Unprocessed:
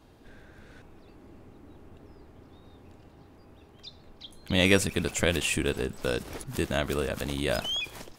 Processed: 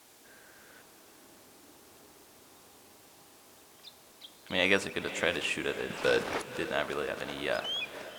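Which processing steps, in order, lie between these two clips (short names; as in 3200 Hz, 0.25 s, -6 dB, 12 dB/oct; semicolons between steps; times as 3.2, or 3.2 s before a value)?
5.9–6.42 sample leveller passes 3; added noise violet -42 dBFS; band-pass 1300 Hz, Q 0.56; diffused feedback echo 0.538 s, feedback 48%, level -13.5 dB; on a send at -16.5 dB: reverb RT60 0.70 s, pre-delay 19 ms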